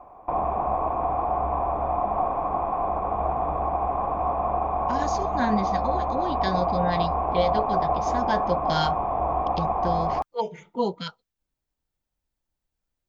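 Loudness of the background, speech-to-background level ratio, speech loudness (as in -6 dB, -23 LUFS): -26.0 LUFS, -4.0 dB, -30.0 LUFS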